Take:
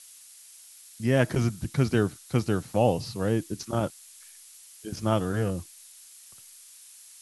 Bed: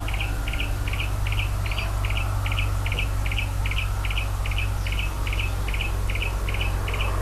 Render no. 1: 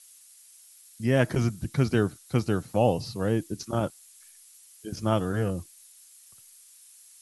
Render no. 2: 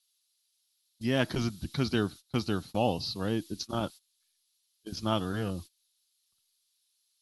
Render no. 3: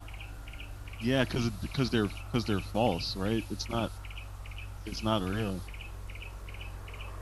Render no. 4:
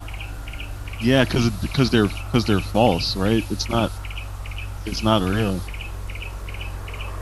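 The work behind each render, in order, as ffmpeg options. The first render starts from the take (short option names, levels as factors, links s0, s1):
-af "afftdn=nr=6:nf=-51"
-af "agate=range=0.112:threshold=0.0112:ratio=16:detection=peak,equalizer=f=125:t=o:w=1:g=-8,equalizer=f=500:t=o:w=1:g=-7,equalizer=f=2000:t=o:w=1:g=-6,equalizer=f=4000:t=o:w=1:g=12,equalizer=f=8000:t=o:w=1:g=-10"
-filter_complex "[1:a]volume=0.141[s0];[0:a][s0]amix=inputs=2:normalize=0"
-af "volume=3.55,alimiter=limit=0.708:level=0:latency=1"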